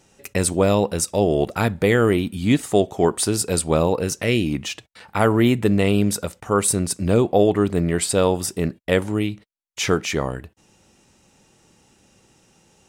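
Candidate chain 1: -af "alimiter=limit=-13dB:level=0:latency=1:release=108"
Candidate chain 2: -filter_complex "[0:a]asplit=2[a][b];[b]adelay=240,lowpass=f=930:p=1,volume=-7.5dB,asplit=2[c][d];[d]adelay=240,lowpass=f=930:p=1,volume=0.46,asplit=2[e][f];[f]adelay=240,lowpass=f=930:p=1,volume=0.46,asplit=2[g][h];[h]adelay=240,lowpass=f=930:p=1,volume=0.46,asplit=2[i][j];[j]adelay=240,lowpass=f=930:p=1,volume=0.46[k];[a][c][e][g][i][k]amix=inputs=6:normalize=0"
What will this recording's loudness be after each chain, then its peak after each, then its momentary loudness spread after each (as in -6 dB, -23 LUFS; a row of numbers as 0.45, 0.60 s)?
-24.5, -20.0 LUFS; -13.0, -2.5 dBFS; 6, 9 LU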